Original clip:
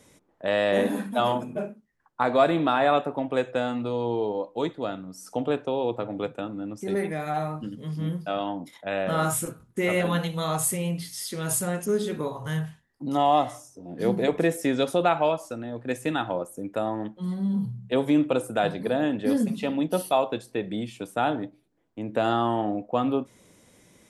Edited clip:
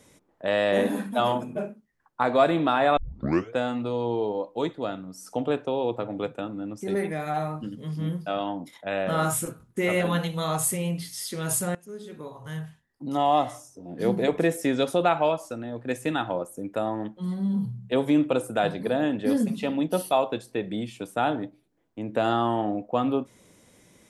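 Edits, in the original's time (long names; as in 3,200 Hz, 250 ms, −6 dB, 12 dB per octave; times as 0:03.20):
0:02.97: tape start 0.58 s
0:11.75–0:13.51: fade in, from −21.5 dB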